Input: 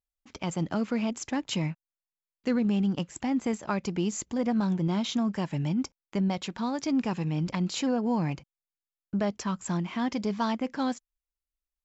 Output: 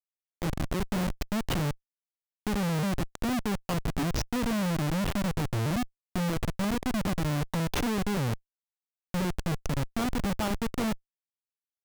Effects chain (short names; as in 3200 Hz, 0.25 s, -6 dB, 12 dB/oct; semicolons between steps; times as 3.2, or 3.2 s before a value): repeated pitch sweeps -4 st, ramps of 1.415 s; Schmitt trigger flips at -30 dBFS; gain +3.5 dB